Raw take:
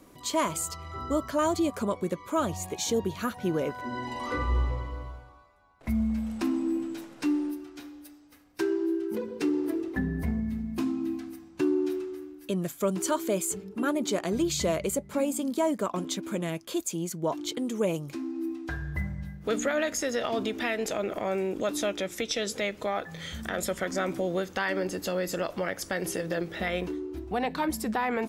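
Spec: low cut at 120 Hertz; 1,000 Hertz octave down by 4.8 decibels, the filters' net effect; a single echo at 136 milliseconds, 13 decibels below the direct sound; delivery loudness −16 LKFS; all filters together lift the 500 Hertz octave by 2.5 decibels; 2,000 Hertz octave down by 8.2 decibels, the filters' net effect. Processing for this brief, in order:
high-pass filter 120 Hz
parametric band 500 Hz +5.5 dB
parametric band 1,000 Hz −6.5 dB
parametric band 2,000 Hz −8.5 dB
single-tap delay 136 ms −13 dB
level +13.5 dB

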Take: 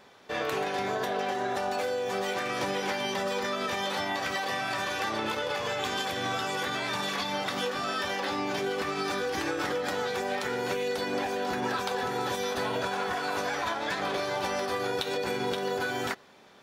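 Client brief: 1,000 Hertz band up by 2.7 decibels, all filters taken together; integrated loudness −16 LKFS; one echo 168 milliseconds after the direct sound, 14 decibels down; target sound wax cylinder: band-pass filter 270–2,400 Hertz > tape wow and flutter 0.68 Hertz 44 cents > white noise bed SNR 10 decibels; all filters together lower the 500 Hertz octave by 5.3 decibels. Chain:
band-pass filter 270–2,400 Hz
parametric band 500 Hz −7.5 dB
parametric band 1,000 Hz +6.5 dB
single-tap delay 168 ms −14 dB
tape wow and flutter 0.68 Hz 44 cents
white noise bed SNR 10 dB
level +14.5 dB

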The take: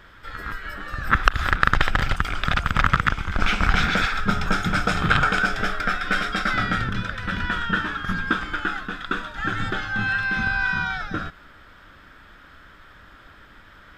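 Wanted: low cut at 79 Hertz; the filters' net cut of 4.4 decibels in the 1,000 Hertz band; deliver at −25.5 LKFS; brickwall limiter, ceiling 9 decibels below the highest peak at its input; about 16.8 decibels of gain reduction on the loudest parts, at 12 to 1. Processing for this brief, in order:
high-pass filter 79 Hz
parametric band 1,000 Hz −7 dB
downward compressor 12 to 1, threshold −33 dBFS
level +12 dB
brickwall limiter −13 dBFS

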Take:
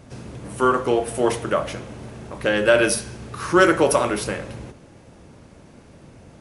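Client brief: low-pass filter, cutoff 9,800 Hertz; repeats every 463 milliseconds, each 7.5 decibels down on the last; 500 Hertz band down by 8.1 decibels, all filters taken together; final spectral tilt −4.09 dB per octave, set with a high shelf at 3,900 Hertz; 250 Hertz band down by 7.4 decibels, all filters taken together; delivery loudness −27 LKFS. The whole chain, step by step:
low-pass filter 9,800 Hz
parametric band 250 Hz −7 dB
parametric band 500 Hz −8 dB
high-shelf EQ 3,900 Hz −6.5 dB
repeating echo 463 ms, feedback 42%, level −7.5 dB
level −1.5 dB

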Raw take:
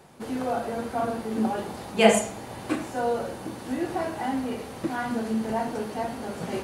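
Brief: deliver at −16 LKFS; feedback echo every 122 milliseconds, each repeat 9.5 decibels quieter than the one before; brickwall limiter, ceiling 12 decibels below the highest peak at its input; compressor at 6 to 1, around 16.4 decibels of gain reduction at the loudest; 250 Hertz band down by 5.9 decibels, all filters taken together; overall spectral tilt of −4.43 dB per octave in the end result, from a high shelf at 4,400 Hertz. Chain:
parametric band 250 Hz −7 dB
high-shelf EQ 4,400 Hz −6.5 dB
downward compressor 6 to 1, threshold −31 dBFS
brickwall limiter −32 dBFS
repeating echo 122 ms, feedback 33%, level −9.5 dB
level +24 dB

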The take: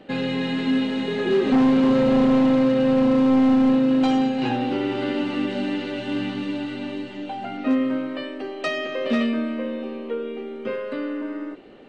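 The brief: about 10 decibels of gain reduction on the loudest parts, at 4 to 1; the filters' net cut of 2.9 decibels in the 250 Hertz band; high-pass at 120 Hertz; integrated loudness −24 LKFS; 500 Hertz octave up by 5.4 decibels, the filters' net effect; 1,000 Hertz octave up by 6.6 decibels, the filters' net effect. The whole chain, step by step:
high-pass filter 120 Hz
parametric band 250 Hz −4.5 dB
parametric band 500 Hz +5.5 dB
parametric band 1,000 Hz +7 dB
downward compressor 4 to 1, threshold −25 dBFS
level +4.5 dB

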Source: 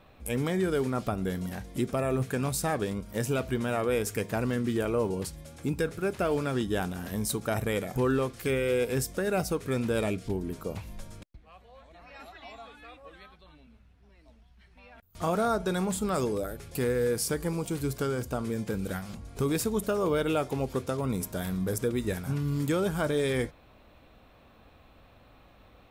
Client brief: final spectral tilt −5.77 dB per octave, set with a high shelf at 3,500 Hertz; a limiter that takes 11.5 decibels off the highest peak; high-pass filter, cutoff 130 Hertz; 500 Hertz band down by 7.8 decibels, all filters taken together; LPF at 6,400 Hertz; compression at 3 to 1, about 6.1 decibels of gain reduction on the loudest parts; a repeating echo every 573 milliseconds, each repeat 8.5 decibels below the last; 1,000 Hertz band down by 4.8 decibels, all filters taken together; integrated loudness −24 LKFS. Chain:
high-pass filter 130 Hz
low-pass filter 6,400 Hz
parametric band 500 Hz −9 dB
parametric band 1,000 Hz −3 dB
high-shelf EQ 3,500 Hz −6 dB
downward compressor 3 to 1, threshold −36 dBFS
brickwall limiter −37 dBFS
repeating echo 573 ms, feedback 38%, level −8.5 dB
level +21.5 dB

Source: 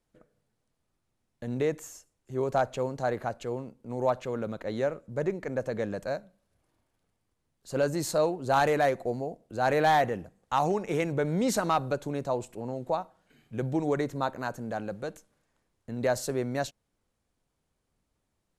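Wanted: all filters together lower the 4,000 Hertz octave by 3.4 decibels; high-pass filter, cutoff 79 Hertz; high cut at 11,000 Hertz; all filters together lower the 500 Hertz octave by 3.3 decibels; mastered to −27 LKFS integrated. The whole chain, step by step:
high-pass filter 79 Hz
low-pass filter 11,000 Hz
parametric band 500 Hz −4 dB
parametric band 4,000 Hz −4 dB
level +5 dB

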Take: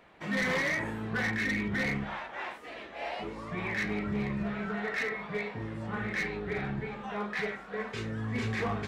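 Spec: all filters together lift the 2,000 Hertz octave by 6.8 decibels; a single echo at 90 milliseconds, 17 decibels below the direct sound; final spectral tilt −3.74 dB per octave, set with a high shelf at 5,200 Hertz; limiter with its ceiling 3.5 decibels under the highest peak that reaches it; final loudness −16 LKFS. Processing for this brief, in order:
parametric band 2,000 Hz +8 dB
high-shelf EQ 5,200 Hz −3.5 dB
brickwall limiter −21 dBFS
single-tap delay 90 ms −17 dB
level +14 dB

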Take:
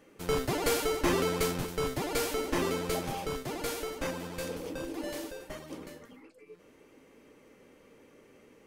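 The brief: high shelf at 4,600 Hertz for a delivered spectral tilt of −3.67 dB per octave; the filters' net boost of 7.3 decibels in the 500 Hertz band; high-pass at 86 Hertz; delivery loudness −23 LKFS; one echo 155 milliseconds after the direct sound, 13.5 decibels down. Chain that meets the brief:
high-pass filter 86 Hz
parametric band 500 Hz +8.5 dB
high-shelf EQ 4,600 Hz +7.5 dB
single-tap delay 155 ms −13.5 dB
level +4 dB

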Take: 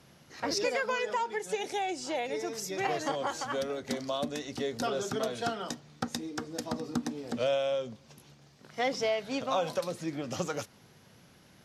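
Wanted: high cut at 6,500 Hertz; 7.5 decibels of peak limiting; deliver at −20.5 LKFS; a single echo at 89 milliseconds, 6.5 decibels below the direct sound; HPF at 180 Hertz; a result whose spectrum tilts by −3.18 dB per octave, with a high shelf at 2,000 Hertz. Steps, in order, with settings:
high-pass filter 180 Hz
low-pass filter 6,500 Hz
high-shelf EQ 2,000 Hz −7 dB
brickwall limiter −25 dBFS
single-tap delay 89 ms −6.5 dB
level +14.5 dB

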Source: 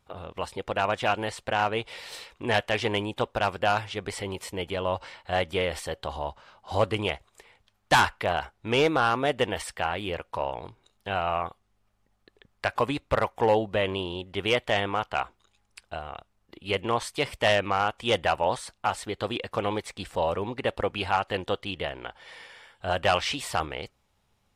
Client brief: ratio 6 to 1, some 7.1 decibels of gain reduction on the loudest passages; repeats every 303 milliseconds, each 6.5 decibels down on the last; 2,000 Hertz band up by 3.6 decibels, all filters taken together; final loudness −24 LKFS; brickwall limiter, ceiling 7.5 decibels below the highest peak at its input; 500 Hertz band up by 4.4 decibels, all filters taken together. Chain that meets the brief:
parametric band 500 Hz +5 dB
parametric band 2,000 Hz +4.5 dB
downward compressor 6 to 1, threshold −21 dBFS
brickwall limiter −17 dBFS
repeating echo 303 ms, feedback 47%, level −6.5 dB
level +6 dB

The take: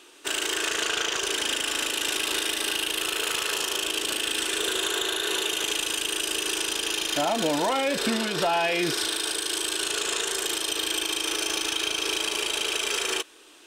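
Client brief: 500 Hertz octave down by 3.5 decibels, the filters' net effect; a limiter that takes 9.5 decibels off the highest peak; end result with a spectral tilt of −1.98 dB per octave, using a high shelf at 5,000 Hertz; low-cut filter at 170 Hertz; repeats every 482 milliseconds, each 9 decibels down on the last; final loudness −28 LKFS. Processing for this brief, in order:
high-pass filter 170 Hz
parametric band 500 Hz −4.5 dB
high-shelf EQ 5,000 Hz −3.5 dB
brickwall limiter −25.5 dBFS
repeating echo 482 ms, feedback 35%, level −9 dB
level +4.5 dB

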